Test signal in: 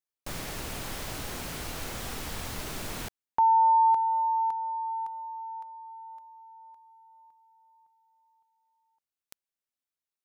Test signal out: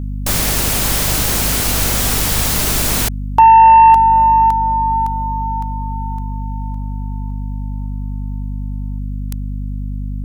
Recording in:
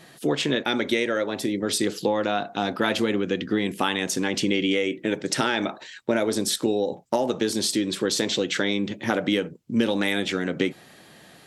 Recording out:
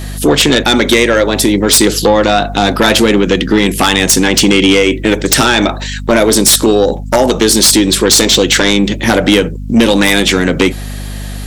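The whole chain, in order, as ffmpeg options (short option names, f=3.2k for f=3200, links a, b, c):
-af "highshelf=f=4.9k:g=10,aeval=exprs='val(0)+0.0141*(sin(2*PI*50*n/s)+sin(2*PI*2*50*n/s)/2+sin(2*PI*3*50*n/s)/3+sin(2*PI*4*50*n/s)/4+sin(2*PI*5*50*n/s)/5)':c=same,aeval=exprs='0.75*sin(PI/2*3.98*val(0)/0.75)':c=same"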